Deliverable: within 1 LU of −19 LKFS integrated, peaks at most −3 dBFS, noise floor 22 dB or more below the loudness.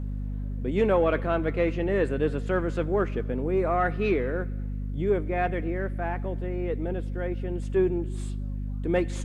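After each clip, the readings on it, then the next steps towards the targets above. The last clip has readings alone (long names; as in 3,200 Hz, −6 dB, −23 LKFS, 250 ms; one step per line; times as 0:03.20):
mains hum 50 Hz; hum harmonics up to 250 Hz; level of the hum −29 dBFS; integrated loudness −28.0 LKFS; sample peak −12.0 dBFS; target loudness −19.0 LKFS
→ hum removal 50 Hz, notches 5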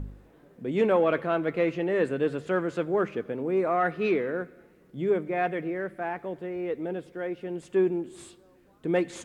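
mains hum none found; integrated loudness −28.5 LKFS; sample peak −13.0 dBFS; target loudness −19.0 LKFS
→ level +9.5 dB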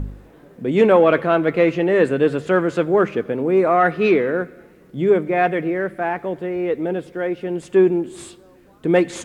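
integrated loudness −19.0 LKFS; sample peak −3.5 dBFS; background noise floor −49 dBFS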